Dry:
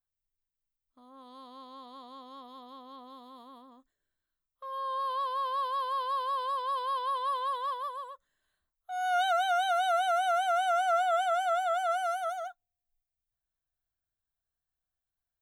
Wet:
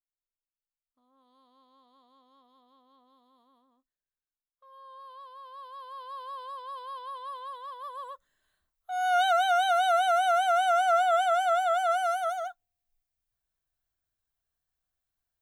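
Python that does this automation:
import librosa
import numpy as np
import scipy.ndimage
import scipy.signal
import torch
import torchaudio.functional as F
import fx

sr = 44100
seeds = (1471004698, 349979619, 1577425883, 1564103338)

y = fx.gain(x, sr, db=fx.line((5.42, -15.0), (6.28, -8.0), (7.71, -8.0), (8.12, 3.5)))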